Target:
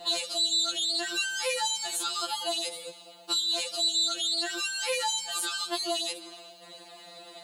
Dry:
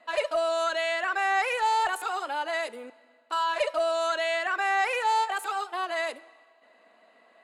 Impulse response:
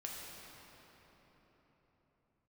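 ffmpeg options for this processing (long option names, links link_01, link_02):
-filter_complex "[0:a]equalizer=frequency=125:width_type=o:width=1:gain=10,equalizer=frequency=250:width_type=o:width=1:gain=11,equalizer=frequency=2000:width_type=o:width=1:gain=-8,equalizer=frequency=4000:width_type=o:width=1:gain=10,equalizer=frequency=8000:width_type=o:width=1:gain=3,asplit=2[link_01][link_02];[link_02]alimiter=level_in=6.5dB:limit=-24dB:level=0:latency=1,volume=-6.5dB,volume=2dB[link_03];[link_01][link_03]amix=inputs=2:normalize=0,acrossover=split=2400|6900[link_04][link_05][link_06];[link_04]acompressor=threshold=-37dB:ratio=4[link_07];[link_05]acompressor=threshold=-42dB:ratio=4[link_08];[link_06]acompressor=threshold=-56dB:ratio=4[link_09];[link_07][link_08][link_09]amix=inputs=3:normalize=0,aeval=exprs='val(0)+0.000398*(sin(2*PI*60*n/s)+sin(2*PI*2*60*n/s)/2+sin(2*PI*3*60*n/s)/3+sin(2*PI*4*60*n/s)/4+sin(2*PI*5*60*n/s)/5)':channel_layout=same,crystalizer=i=3.5:c=0,afftfilt=real='re*2.83*eq(mod(b,8),0)':imag='im*2.83*eq(mod(b,8),0)':win_size=2048:overlap=0.75,volume=4dB"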